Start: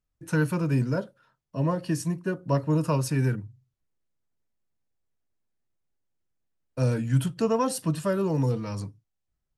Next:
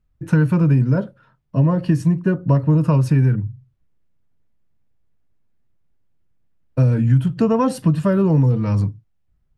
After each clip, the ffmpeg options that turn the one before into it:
-af "bass=f=250:g=9,treble=f=4k:g=-12,acompressor=threshold=-20dB:ratio=6,volume=8dB"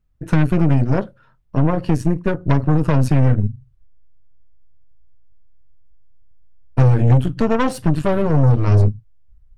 -af "asubboost=boost=9:cutoff=69,aeval=exprs='0.631*(cos(1*acos(clip(val(0)/0.631,-1,1)))-cos(1*PI/2))+0.1*(cos(8*acos(clip(val(0)/0.631,-1,1)))-cos(8*PI/2))':c=same"

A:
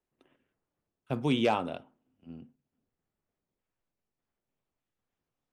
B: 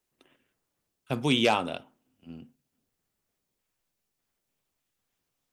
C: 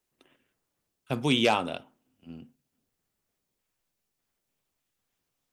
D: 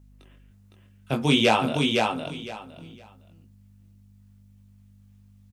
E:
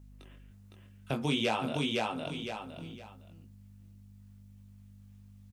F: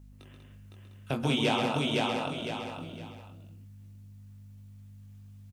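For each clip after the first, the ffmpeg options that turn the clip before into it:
-af "highshelf=f=2.2k:g=11,volume=1.5dB"
-af anull
-af "flanger=delay=18:depth=4:speed=1.3,aeval=exprs='val(0)+0.00112*(sin(2*PI*50*n/s)+sin(2*PI*2*50*n/s)/2+sin(2*PI*3*50*n/s)/3+sin(2*PI*4*50*n/s)/4+sin(2*PI*5*50*n/s)/5)':c=same,aecho=1:1:510|1020|1530:0.668|0.134|0.0267,volume=7dB"
-af "acompressor=threshold=-35dB:ratio=2"
-af "aecho=1:1:131.2|192.4:0.501|0.447,volume=1.5dB"

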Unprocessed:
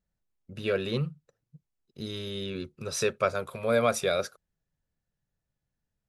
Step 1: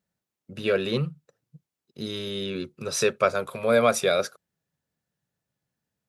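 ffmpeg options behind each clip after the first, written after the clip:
-af "highpass=130,volume=4.5dB"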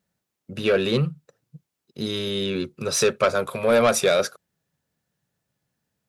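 -af "asoftclip=type=tanh:threshold=-17dB,volume=5.5dB"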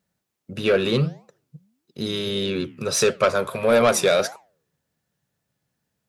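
-af "flanger=delay=6.5:depth=9:regen=-88:speed=1.6:shape=triangular,volume=5.5dB"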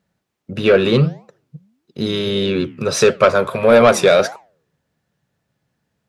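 -af "highshelf=f=5.8k:g=-12,volume=7dB"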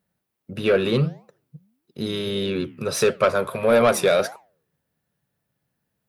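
-af "aexciter=amount=2.8:drive=6.7:freq=9.3k,volume=-6.5dB"

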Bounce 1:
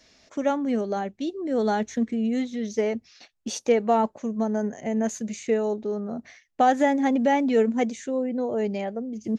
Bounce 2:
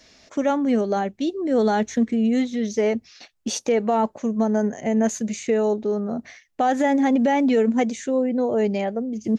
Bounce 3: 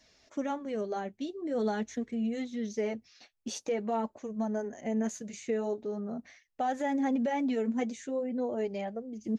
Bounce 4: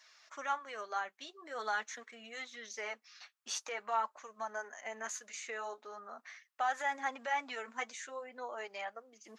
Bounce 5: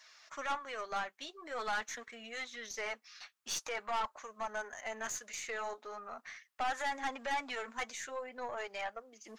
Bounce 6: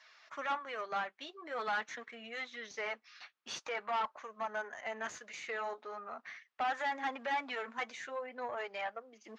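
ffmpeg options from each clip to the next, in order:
-af "alimiter=limit=-17dB:level=0:latency=1:release=65,volume=5dB"
-af "flanger=delay=1:depth=7.8:regen=-39:speed=0.45:shape=triangular,volume=-7.5dB"
-af "highpass=f=1.2k:t=q:w=2.6,volume=1dB"
-af "aeval=exprs='(tanh(50.1*val(0)+0.35)-tanh(0.35))/50.1':c=same,volume=4dB"
-af "highpass=120,lowpass=3.6k,volume=1dB"

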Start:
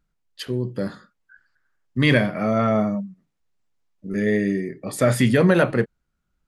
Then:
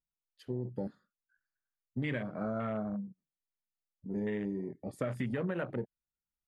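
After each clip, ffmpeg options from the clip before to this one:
-af "afwtdn=0.0562,acompressor=threshold=-23dB:ratio=6,volume=-8.5dB"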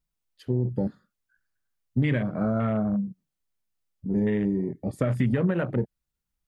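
-af "lowshelf=f=220:g=10,volume=6dB"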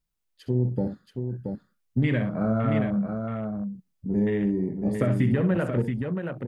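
-af "aecho=1:1:64|677:0.316|0.531"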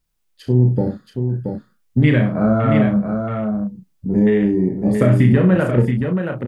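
-filter_complex "[0:a]asplit=2[a][b];[b]adelay=33,volume=-6dB[c];[a][c]amix=inputs=2:normalize=0,volume=8dB"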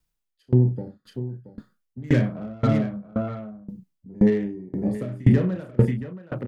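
-filter_complex "[0:a]acrossover=split=100|590[a][b][c];[c]asoftclip=type=tanh:threshold=-25.5dB[d];[a][b][d]amix=inputs=3:normalize=0,aeval=exprs='val(0)*pow(10,-27*if(lt(mod(1.9*n/s,1),2*abs(1.9)/1000),1-mod(1.9*n/s,1)/(2*abs(1.9)/1000),(mod(1.9*n/s,1)-2*abs(1.9)/1000)/(1-2*abs(1.9)/1000))/20)':c=same"

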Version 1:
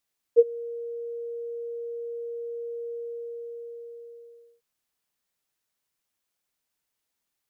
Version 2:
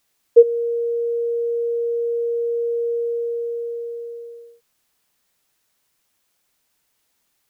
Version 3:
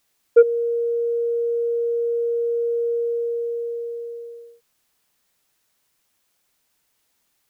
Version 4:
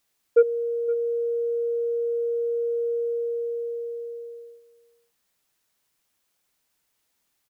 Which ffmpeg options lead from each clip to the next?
-af "alimiter=level_in=13.5dB:limit=-1dB:release=50:level=0:latency=1,volume=-1dB"
-af "asoftclip=type=tanh:threshold=-4dB"
-af "aecho=1:1:516:0.133,volume=-4.5dB"

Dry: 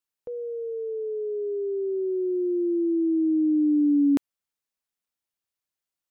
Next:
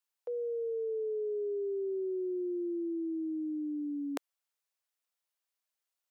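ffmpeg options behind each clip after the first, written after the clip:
-af "highpass=f=460:w=0.5412,highpass=f=460:w=1.3066"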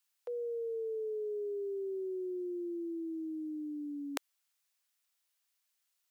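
-af "tiltshelf=f=820:g=-7,volume=1dB"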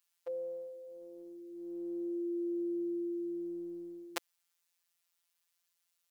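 -af "afftfilt=real='hypot(re,im)*cos(PI*b)':imag='0':win_size=1024:overlap=0.75,volume=3.5dB"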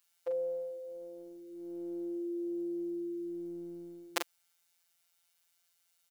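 -filter_complex "[0:a]asplit=2[a][b];[b]adelay=42,volume=-5.5dB[c];[a][c]amix=inputs=2:normalize=0,volume=5dB"

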